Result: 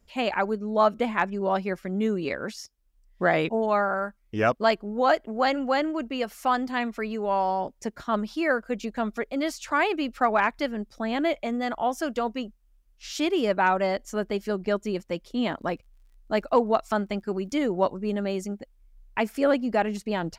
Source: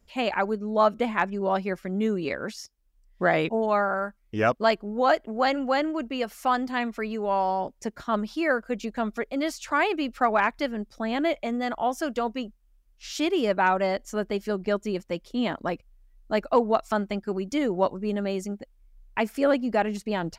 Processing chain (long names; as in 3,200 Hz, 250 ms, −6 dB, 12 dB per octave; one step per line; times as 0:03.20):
0:15.47–0:17.53: surface crackle 31 per second −52 dBFS